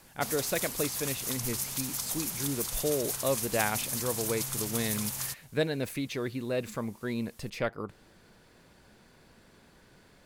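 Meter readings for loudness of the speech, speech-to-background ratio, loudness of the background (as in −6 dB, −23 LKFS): −34.0 LKFS, −1.5 dB, −32.5 LKFS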